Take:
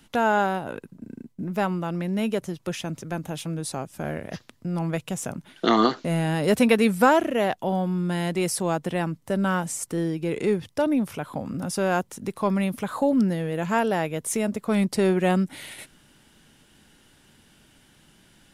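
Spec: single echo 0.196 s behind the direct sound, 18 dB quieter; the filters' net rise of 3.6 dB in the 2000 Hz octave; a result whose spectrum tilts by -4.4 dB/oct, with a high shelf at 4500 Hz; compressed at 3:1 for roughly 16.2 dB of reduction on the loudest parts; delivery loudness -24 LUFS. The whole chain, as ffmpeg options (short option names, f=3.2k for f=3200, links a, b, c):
-af "equalizer=f=2k:t=o:g=3.5,highshelf=f=4.5k:g=7.5,acompressor=threshold=-36dB:ratio=3,aecho=1:1:196:0.126,volume=12dB"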